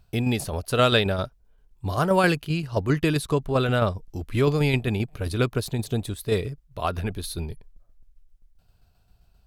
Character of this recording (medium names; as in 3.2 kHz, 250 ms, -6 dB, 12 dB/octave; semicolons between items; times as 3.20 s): tremolo saw down 7.6 Hz, depth 45%